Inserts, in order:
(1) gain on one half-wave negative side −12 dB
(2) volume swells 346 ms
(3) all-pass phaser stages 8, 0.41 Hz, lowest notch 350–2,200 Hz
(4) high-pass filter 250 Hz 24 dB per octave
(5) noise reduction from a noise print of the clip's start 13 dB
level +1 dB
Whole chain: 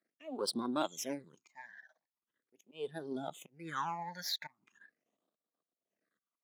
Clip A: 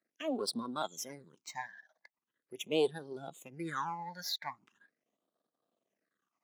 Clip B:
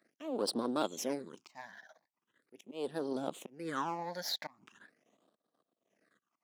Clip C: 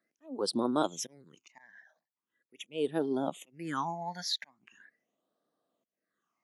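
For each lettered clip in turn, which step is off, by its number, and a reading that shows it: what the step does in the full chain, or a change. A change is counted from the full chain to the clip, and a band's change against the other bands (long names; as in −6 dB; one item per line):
2, 500 Hz band +4.0 dB
5, 500 Hz band +3.5 dB
1, distortion level −3 dB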